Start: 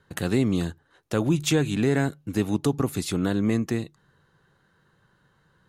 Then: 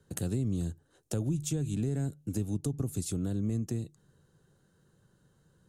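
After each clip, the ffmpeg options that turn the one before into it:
-filter_complex "[0:a]equalizer=f=1k:t=o:w=1:g=-9,equalizer=f=2k:t=o:w=1:g=-11,equalizer=f=4k:t=o:w=1:g=-5,equalizer=f=8k:t=o:w=1:g=7,acrossover=split=130[a][b];[b]acompressor=threshold=-34dB:ratio=6[c];[a][c]amix=inputs=2:normalize=0"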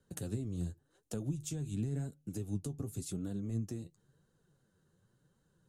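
-af "flanger=delay=3.3:depth=9.5:regen=40:speed=0.92:shape=triangular,volume=-2.5dB"

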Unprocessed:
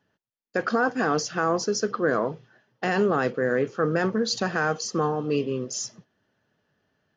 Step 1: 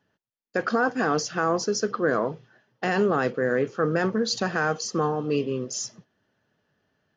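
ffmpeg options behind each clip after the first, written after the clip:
-af anull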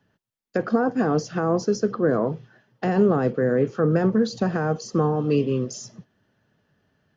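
-filter_complex "[0:a]bass=f=250:g=6,treble=f=4k:g=-1,acrossover=split=310|900[a][b][c];[c]acompressor=threshold=-38dB:ratio=6[d];[a][b][d]amix=inputs=3:normalize=0,volume=2.5dB"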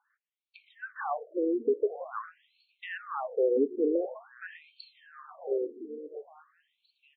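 -af "alimiter=limit=-14dB:level=0:latency=1:release=301,aecho=1:1:861|1722|2583|3444:0.188|0.081|0.0348|0.015,afftfilt=real='re*between(b*sr/1024,330*pow(3200/330,0.5+0.5*sin(2*PI*0.47*pts/sr))/1.41,330*pow(3200/330,0.5+0.5*sin(2*PI*0.47*pts/sr))*1.41)':imag='im*between(b*sr/1024,330*pow(3200/330,0.5+0.5*sin(2*PI*0.47*pts/sr))/1.41,330*pow(3200/330,0.5+0.5*sin(2*PI*0.47*pts/sr))*1.41)':win_size=1024:overlap=0.75"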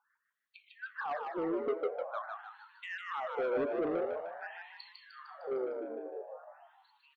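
-filter_complex "[0:a]asoftclip=type=tanh:threshold=-28dB,asplit=2[a][b];[b]asplit=6[c][d][e][f][g][h];[c]adelay=152,afreqshift=84,volume=-4.5dB[i];[d]adelay=304,afreqshift=168,volume=-10.5dB[j];[e]adelay=456,afreqshift=252,volume=-16.5dB[k];[f]adelay=608,afreqshift=336,volume=-22.6dB[l];[g]adelay=760,afreqshift=420,volume=-28.6dB[m];[h]adelay=912,afreqshift=504,volume=-34.6dB[n];[i][j][k][l][m][n]amix=inputs=6:normalize=0[o];[a][o]amix=inputs=2:normalize=0,volume=-2dB"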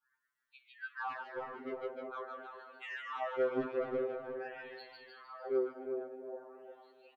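-filter_complex "[0:a]adynamicequalizer=threshold=0.00501:dfrequency=710:dqfactor=0.84:tfrequency=710:tqfactor=0.84:attack=5:release=100:ratio=0.375:range=3:mode=cutabove:tftype=bell,asplit=2[a][b];[b]adelay=358,lowpass=f=1.1k:p=1,volume=-6dB,asplit=2[c][d];[d]adelay=358,lowpass=f=1.1k:p=1,volume=0.36,asplit=2[e][f];[f]adelay=358,lowpass=f=1.1k:p=1,volume=0.36,asplit=2[g][h];[h]adelay=358,lowpass=f=1.1k:p=1,volume=0.36[i];[a][c][e][g][i]amix=inputs=5:normalize=0,afftfilt=real='re*2.45*eq(mod(b,6),0)':imag='im*2.45*eq(mod(b,6),0)':win_size=2048:overlap=0.75,volume=1dB"

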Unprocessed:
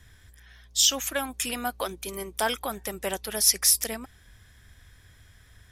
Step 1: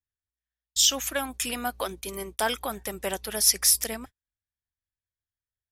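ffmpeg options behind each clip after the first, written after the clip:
-af "agate=range=-44dB:threshold=-41dB:ratio=16:detection=peak"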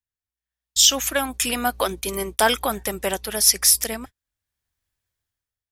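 -af "dynaudnorm=f=170:g=7:m=14dB,volume=-1dB"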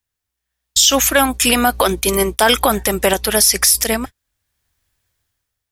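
-af "alimiter=level_in=12.5dB:limit=-1dB:release=50:level=0:latency=1,volume=-1dB"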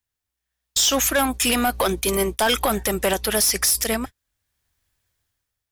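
-af "asoftclip=type=tanh:threshold=-9.5dB,volume=-3.5dB"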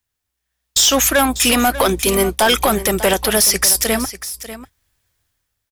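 -af "aecho=1:1:594:0.2,volume=5.5dB"

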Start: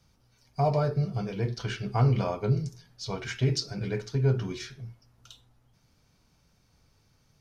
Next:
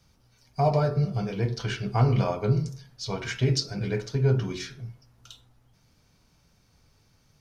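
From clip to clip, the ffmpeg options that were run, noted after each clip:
-af "bandreject=f=45.17:t=h:w=4,bandreject=f=90.34:t=h:w=4,bandreject=f=135.51:t=h:w=4,bandreject=f=180.68:t=h:w=4,bandreject=f=225.85:t=h:w=4,bandreject=f=271.02:t=h:w=4,bandreject=f=316.19:t=h:w=4,bandreject=f=361.36:t=h:w=4,bandreject=f=406.53:t=h:w=4,bandreject=f=451.7:t=h:w=4,bandreject=f=496.87:t=h:w=4,bandreject=f=542.04:t=h:w=4,bandreject=f=587.21:t=h:w=4,bandreject=f=632.38:t=h:w=4,bandreject=f=677.55:t=h:w=4,bandreject=f=722.72:t=h:w=4,bandreject=f=767.89:t=h:w=4,bandreject=f=813.06:t=h:w=4,bandreject=f=858.23:t=h:w=4,bandreject=f=903.4:t=h:w=4,bandreject=f=948.57:t=h:w=4,bandreject=f=993.74:t=h:w=4,bandreject=f=1.03891k:t=h:w=4,bandreject=f=1.08408k:t=h:w=4,bandreject=f=1.12925k:t=h:w=4,bandreject=f=1.17442k:t=h:w=4,bandreject=f=1.21959k:t=h:w=4,bandreject=f=1.26476k:t=h:w=4,bandreject=f=1.30993k:t=h:w=4,bandreject=f=1.3551k:t=h:w=4,bandreject=f=1.40027k:t=h:w=4,bandreject=f=1.44544k:t=h:w=4,bandreject=f=1.49061k:t=h:w=4,volume=3dB"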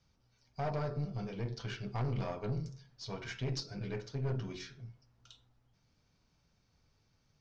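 -af "aeval=exprs='(tanh(12.6*val(0)+0.4)-tanh(0.4))/12.6':c=same,lowpass=f=6.5k:w=0.5412,lowpass=f=6.5k:w=1.3066,volume=-8.5dB"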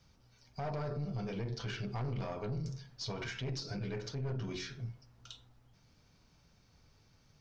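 -af "alimiter=level_in=14dB:limit=-24dB:level=0:latency=1:release=82,volume=-14dB,volume=7dB"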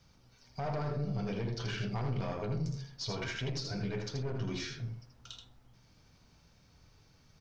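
-af "aecho=1:1:80:0.531,volume=2dB"

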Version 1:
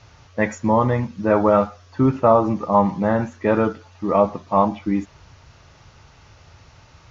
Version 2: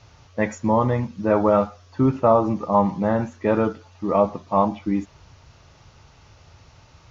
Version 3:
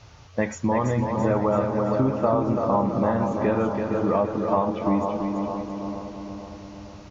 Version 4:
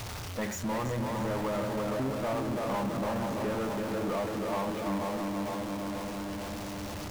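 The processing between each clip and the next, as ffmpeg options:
-af "equalizer=f=1.7k:w=1.5:g=-3,volume=-1.5dB"
-filter_complex "[0:a]asplit=2[a][b];[b]adelay=464,lowpass=f=1.6k:p=1,volume=-10dB,asplit=2[c][d];[d]adelay=464,lowpass=f=1.6k:p=1,volume=0.55,asplit=2[e][f];[f]adelay=464,lowpass=f=1.6k:p=1,volume=0.55,asplit=2[g][h];[h]adelay=464,lowpass=f=1.6k:p=1,volume=0.55,asplit=2[i][j];[j]adelay=464,lowpass=f=1.6k:p=1,volume=0.55,asplit=2[k][l];[l]adelay=464,lowpass=f=1.6k:p=1,volume=0.55[m];[c][e][g][i][k][m]amix=inputs=6:normalize=0[n];[a][n]amix=inputs=2:normalize=0,acompressor=threshold=-21dB:ratio=6,asplit=2[o][p];[p]aecho=0:1:334|668|1002|1336|1670|2004:0.531|0.265|0.133|0.0664|0.0332|0.0166[q];[o][q]amix=inputs=2:normalize=0,volume=2dB"
-af "aeval=exprs='val(0)+0.5*0.0596*sgn(val(0))':c=same,flanger=delay=7.5:depth=8.6:regen=85:speed=0.9:shape=triangular,asoftclip=type=tanh:threshold=-22dB,volume=-4.5dB"

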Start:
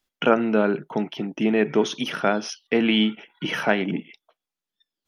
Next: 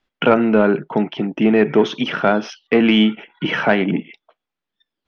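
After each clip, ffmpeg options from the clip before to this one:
-af "acontrast=89,lowpass=3k"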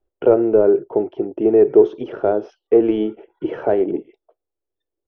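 -af "firequalizer=gain_entry='entry(100,0);entry(160,-21);entry(240,-16);entry(360,3);entry(1000,-15);entry(2100,-26)':delay=0.05:min_phase=1,volume=3.5dB"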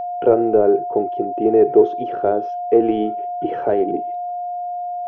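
-af "aeval=exprs='val(0)+0.0794*sin(2*PI*710*n/s)':c=same,volume=-1dB"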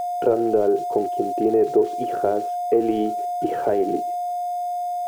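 -af "acompressor=threshold=-18dB:ratio=2,aeval=exprs='val(0)*gte(abs(val(0)),0.0126)':c=same"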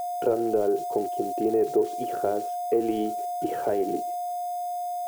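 -af "crystalizer=i=1.5:c=0,volume=-5dB"

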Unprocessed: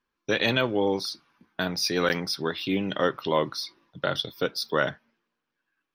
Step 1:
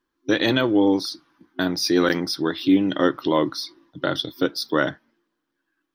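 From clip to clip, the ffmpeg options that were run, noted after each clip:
-af "superequalizer=6b=3.16:12b=0.562,volume=2.5dB"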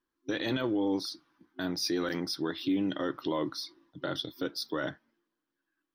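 -af "alimiter=limit=-13.5dB:level=0:latency=1:release=13,volume=-8dB"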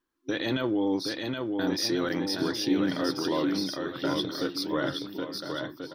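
-af "aecho=1:1:770|1386|1879|2273|2588:0.631|0.398|0.251|0.158|0.1,volume=2.5dB"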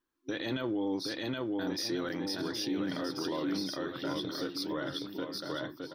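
-af "alimiter=limit=-22dB:level=0:latency=1:release=76,volume=-3dB"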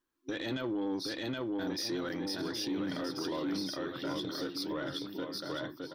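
-af "asoftclip=type=tanh:threshold=-26.5dB"

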